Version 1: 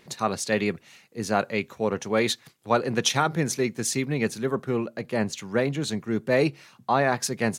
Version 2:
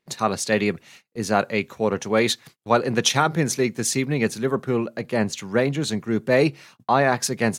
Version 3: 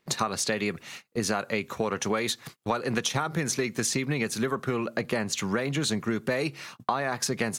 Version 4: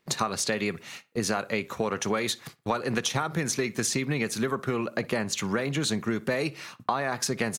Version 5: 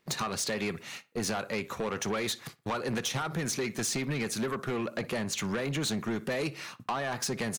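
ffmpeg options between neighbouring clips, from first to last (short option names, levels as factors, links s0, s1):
-af "agate=range=0.0562:threshold=0.00316:ratio=16:detection=peak,volume=1.5"
-filter_complex "[0:a]acrossover=split=1200|6200[s0][s1][s2];[s0]acompressor=threshold=0.0447:ratio=4[s3];[s1]acompressor=threshold=0.0282:ratio=4[s4];[s2]acompressor=threshold=0.0178:ratio=4[s5];[s3][s4][s5]amix=inputs=3:normalize=0,equalizer=f=1200:t=o:w=0.52:g=3.5,acompressor=threshold=0.0355:ratio=6,volume=1.88"
-filter_complex "[0:a]asplit=2[s0][s1];[s1]adelay=60,lowpass=f=3300:p=1,volume=0.1,asplit=2[s2][s3];[s3]adelay=60,lowpass=f=3300:p=1,volume=0.33,asplit=2[s4][s5];[s5]adelay=60,lowpass=f=3300:p=1,volume=0.33[s6];[s0][s2][s4][s6]amix=inputs=4:normalize=0"
-af "asoftclip=type=tanh:threshold=0.0501"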